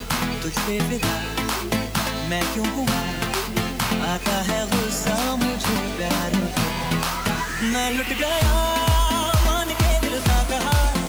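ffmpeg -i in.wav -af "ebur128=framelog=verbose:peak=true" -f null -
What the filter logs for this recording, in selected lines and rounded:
Integrated loudness:
  I:         -22.3 LUFS
  Threshold: -32.3 LUFS
Loudness range:
  LRA:         3.0 LU
  Threshold: -42.4 LUFS
  LRA low:   -23.7 LUFS
  LRA high:  -20.7 LUFS
True peak:
  Peak:       -9.6 dBFS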